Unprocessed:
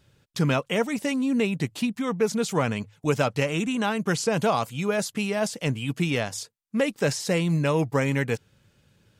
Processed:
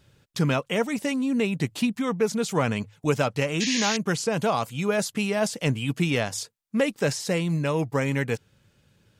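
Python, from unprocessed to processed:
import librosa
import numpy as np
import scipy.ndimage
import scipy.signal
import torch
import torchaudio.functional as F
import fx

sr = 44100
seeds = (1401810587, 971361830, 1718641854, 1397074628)

y = fx.rider(x, sr, range_db=3, speed_s=0.5)
y = fx.spec_paint(y, sr, seeds[0], shape='noise', start_s=3.6, length_s=0.37, low_hz=1600.0, high_hz=7000.0, level_db=-28.0)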